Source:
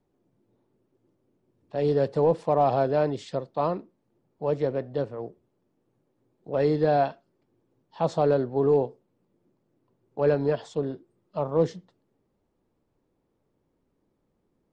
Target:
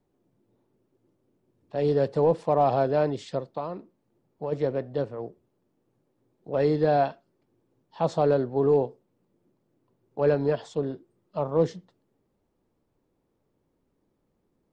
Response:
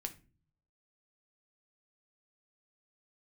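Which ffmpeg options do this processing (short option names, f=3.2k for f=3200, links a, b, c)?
-filter_complex "[0:a]asplit=3[a][b][c];[a]afade=t=out:st=3.51:d=0.02[d];[b]acompressor=threshold=-28dB:ratio=10,afade=t=in:st=3.51:d=0.02,afade=t=out:st=4.51:d=0.02[e];[c]afade=t=in:st=4.51:d=0.02[f];[d][e][f]amix=inputs=3:normalize=0"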